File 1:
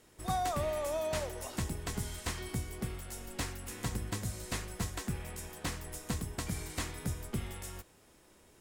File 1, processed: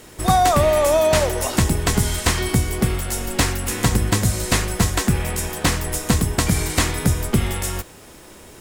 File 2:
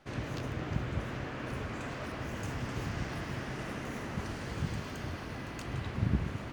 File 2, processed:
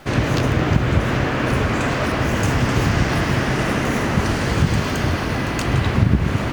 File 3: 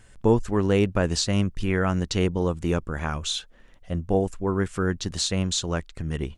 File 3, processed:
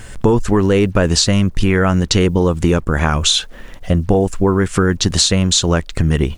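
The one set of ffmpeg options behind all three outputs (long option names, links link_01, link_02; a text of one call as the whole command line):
ffmpeg -i in.wav -af "apsyclip=16dB,acompressor=threshold=-14dB:ratio=5,acrusher=bits=8:mix=0:aa=0.5,volume=3dB" out.wav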